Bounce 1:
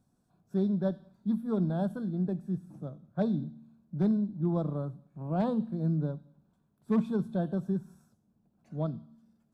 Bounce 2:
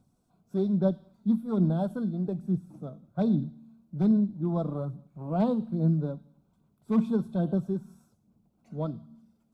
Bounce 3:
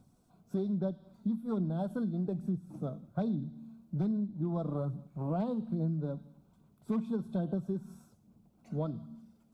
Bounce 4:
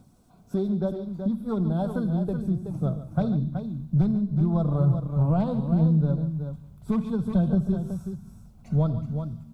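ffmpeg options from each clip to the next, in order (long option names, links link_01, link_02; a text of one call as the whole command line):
ffmpeg -i in.wav -af "bandreject=frequency=1700:width=5,aphaser=in_gain=1:out_gain=1:delay=4.6:decay=0.35:speed=1.2:type=sinusoidal,volume=1.5dB" out.wav
ffmpeg -i in.wav -af "acompressor=threshold=-34dB:ratio=6,volume=3.5dB" out.wav
ffmpeg -i in.wav -filter_complex "[0:a]asubboost=boost=9.5:cutoff=92,asplit=2[link_01][link_02];[link_02]aecho=0:1:78|142|375:0.112|0.211|0.398[link_03];[link_01][link_03]amix=inputs=2:normalize=0,volume=8dB" out.wav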